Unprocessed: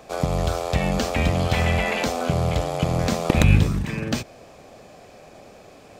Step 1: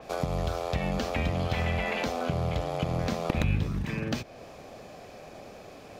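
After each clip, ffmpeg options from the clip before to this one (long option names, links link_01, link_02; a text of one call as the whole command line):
ffmpeg -i in.wav -af "equalizer=frequency=8000:width_type=o:width=0.38:gain=-5.5,acompressor=threshold=-31dB:ratio=2,adynamicequalizer=threshold=0.00251:dfrequency=5100:dqfactor=0.7:tfrequency=5100:tqfactor=0.7:attack=5:release=100:ratio=0.375:range=2.5:mode=cutabove:tftype=highshelf" out.wav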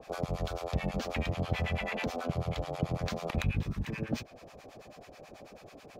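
ffmpeg -i in.wav -filter_complex "[0:a]acrossover=split=800[link_01][link_02];[link_01]aeval=exprs='val(0)*(1-1/2+1/2*cos(2*PI*9.2*n/s))':channel_layout=same[link_03];[link_02]aeval=exprs='val(0)*(1-1/2-1/2*cos(2*PI*9.2*n/s))':channel_layout=same[link_04];[link_03][link_04]amix=inputs=2:normalize=0" out.wav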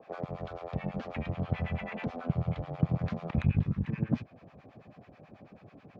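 ffmpeg -i in.wav -af "asubboost=boost=6:cutoff=190,highpass=140,lowpass=2200,aeval=exprs='0.224*(cos(1*acos(clip(val(0)/0.224,-1,1)))-cos(1*PI/2))+0.00891*(cos(7*acos(clip(val(0)/0.224,-1,1)))-cos(7*PI/2))':channel_layout=same" out.wav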